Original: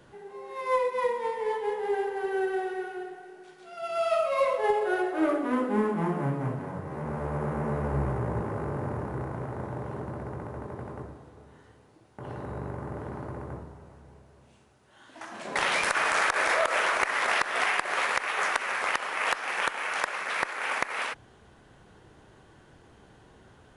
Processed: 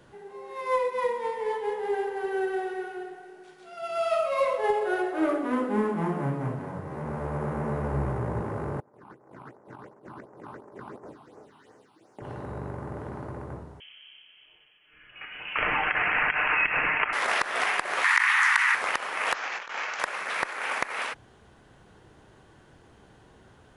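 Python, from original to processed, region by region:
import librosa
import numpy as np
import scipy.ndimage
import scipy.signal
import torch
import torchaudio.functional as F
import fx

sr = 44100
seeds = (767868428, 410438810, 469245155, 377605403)

y = fx.chain(x, sr, fx.highpass(hz=290.0, slope=12),
    fx.phaser_stages(stages=6, low_hz=470.0, high_hz=3700.0, hz=2.8, feedback_pct=15),
    fx.over_compress(threshold_db=-46.0, ratio=-0.5), at=(8.8, 12.22))
y = fx.chain(y, sr, fx.freq_invert(carrier_hz=3200),
    fx.hum_notches(base_hz=50, count=5),
    fx.comb(ms=6.6, depth=0.37), at=(13.8, 17.13))
y = fx.chain(y, sr, fx.steep_highpass(hz=860.0, slope=72),
    fx.peak_eq(hz=1900.0, db=9.0, octaves=0.42),
    fx.env_flatten(amount_pct=70), at=(18.04, 18.75))
y = fx.chain(y, sr, fx.resample_bad(factor=3, down='none', up='filtered'),
    fx.low_shelf(hz=380.0, db=-6.5),
    fx.over_compress(threshold_db=-33.0, ratio=-0.5), at=(19.34, 20.0))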